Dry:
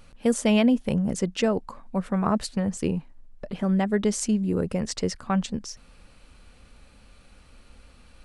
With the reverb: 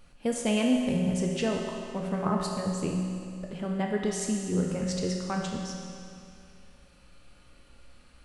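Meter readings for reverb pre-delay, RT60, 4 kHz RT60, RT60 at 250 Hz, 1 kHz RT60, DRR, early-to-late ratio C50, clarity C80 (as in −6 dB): 6 ms, 2.4 s, 2.4 s, 2.4 s, 2.4 s, 0.0 dB, 2.0 dB, 3.0 dB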